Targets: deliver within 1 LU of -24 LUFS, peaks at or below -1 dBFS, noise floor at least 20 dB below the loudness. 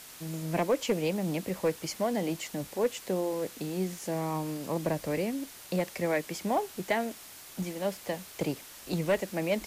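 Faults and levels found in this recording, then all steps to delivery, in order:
clipped samples 0.3%; clipping level -19.5 dBFS; noise floor -49 dBFS; noise floor target -52 dBFS; loudness -32.0 LUFS; peak level -19.5 dBFS; loudness target -24.0 LUFS
-> clip repair -19.5 dBFS; noise reduction 6 dB, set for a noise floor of -49 dBFS; trim +8 dB

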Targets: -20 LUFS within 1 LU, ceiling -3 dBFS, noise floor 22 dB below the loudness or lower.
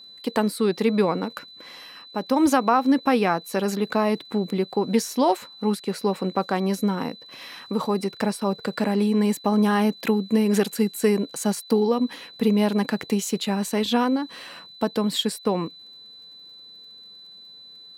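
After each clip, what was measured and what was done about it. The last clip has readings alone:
tick rate 45 per s; steady tone 4 kHz; tone level -43 dBFS; loudness -23.5 LUFS; peak level -7.0 dBFS; loudness target -20.0 LUFS
-> de-click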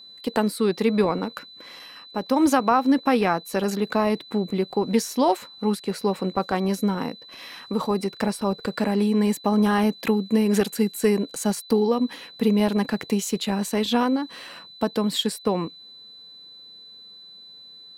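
tick rate 0.50 per s; steady tone 4 kHz; tone level -43 dBFS
-> band-stop 4 kHz, Q 30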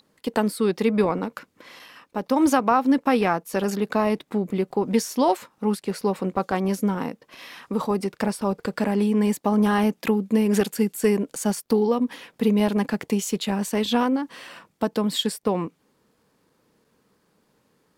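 steady tone not found; loudness -23.5 LUFS; peak level -7.0 dBFS; loudness target -20.0 LUFS
-> trim +3.5 dB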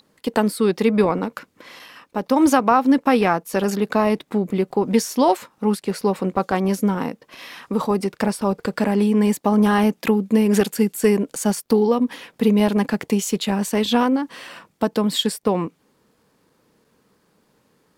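loudness -20.0 LUFS; peak level -3.5 dBFS; noise floor -64 dBFS

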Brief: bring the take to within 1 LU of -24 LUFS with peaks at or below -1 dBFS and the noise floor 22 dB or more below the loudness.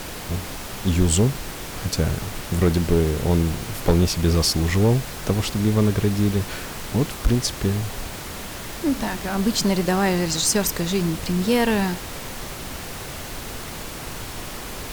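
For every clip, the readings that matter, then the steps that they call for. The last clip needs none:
clipped samples 0.6%; clipping level -10.0 dBFS; noise floor -34 dBFS; noise floor target -45 dBFS; loudness -23.0 LUFS; peak level -10.0 dBFS; loudness target -24.0 LUFS
-> clip repair -10 dBFS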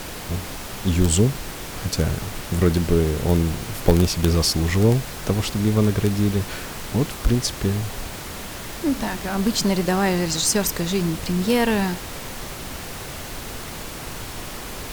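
clipped samples 0.0%; noise floor -34 dBFS; noise floor target -45 dBFS
-> noise print and reduce 11 dB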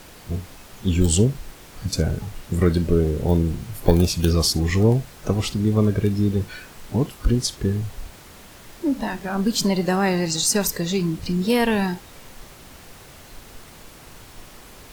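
noise floor -45 dBFS; loudness -22.0 LUFS; peak level -1.0 dBFS; loudness target -24.0 LUFS
-> trim -2 dB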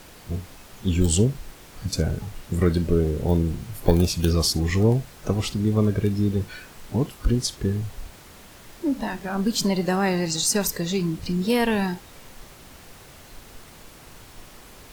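loudness -24.0 LUFS; peak level -3.0 dBFS; noise floor -47 dBFS

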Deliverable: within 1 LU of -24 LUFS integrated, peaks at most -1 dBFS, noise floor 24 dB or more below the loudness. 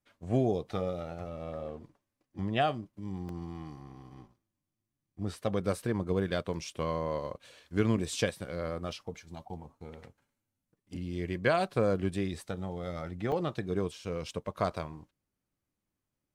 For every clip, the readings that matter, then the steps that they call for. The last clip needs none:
dropouts 3; longest dropout 2.0 ms; loudness -33.5 LUFS; peak level -13.5 dBFS; loudness target -24.0 LUFS
-> interpolate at 3.29/8.92/13.32 s, 2 ms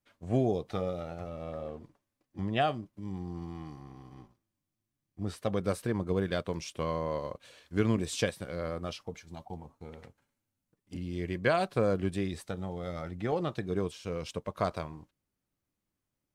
dropouts 0; loudness -33.5 LUFS; peak level -13.5 dBFS; loudness target -24.0 LUFS
-> trim +9.5 dB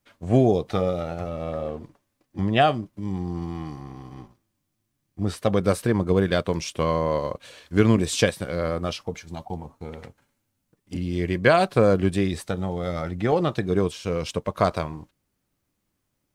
loudness -24.0 LUFS; peak level -4.0 dBFS; noise floor -77 dBFS

